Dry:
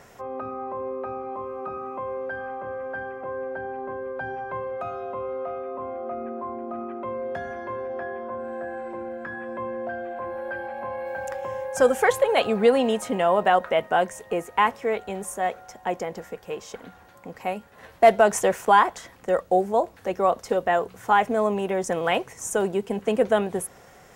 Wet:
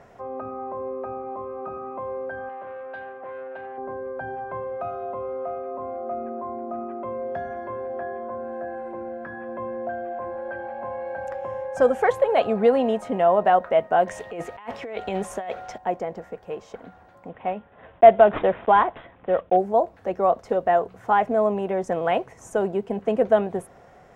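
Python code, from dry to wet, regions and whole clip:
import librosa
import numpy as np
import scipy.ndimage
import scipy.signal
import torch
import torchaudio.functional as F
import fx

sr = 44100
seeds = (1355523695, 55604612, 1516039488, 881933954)

y = fx.chain(x, sr, fx.low_shelf(hz=290.0, db=-11.5),
    fx.transformer_sat(knee_hz=1100.0), at=(2.49, 3.78))
y = fx.chain(y, sr, fx.peak_eq(hz=3500.0, db=10.0, octaves=1.9),
    fx.over_compress(threshold_db=-31.0, ratio=-1.0), at=(14.07, 15.78))
y = fx.chain(y, sr, fx.block_float(bits=5),
    fx.resample_bad(factor=6, down='none', up='filtered'), at=(17.29, 19.57))
y = fx.lowpass(y, sr, hz=1400.0, slope=6)
y = fx.peak_eq(y, sr, hz=670.0, db=5.5, octaves=0.3)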